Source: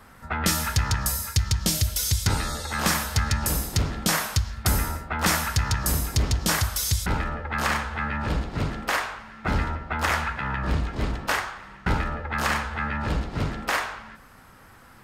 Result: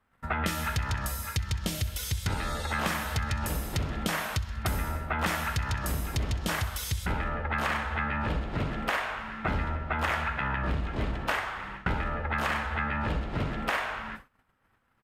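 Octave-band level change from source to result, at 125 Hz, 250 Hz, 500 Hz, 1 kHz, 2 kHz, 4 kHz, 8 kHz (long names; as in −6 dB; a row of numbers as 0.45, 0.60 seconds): −5.0, −4.5, −2.5, −3.5, −3.5, −7.5, −12.0 decibels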